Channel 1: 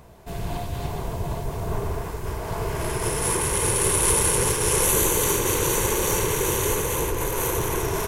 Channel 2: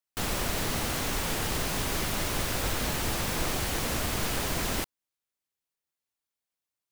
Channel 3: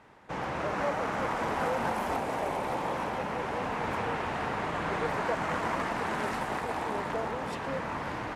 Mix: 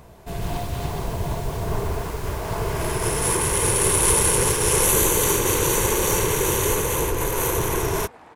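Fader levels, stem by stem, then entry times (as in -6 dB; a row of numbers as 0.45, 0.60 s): +2.0, -11.5, -14.0 dB; 0.00, 0.25, 1.45 s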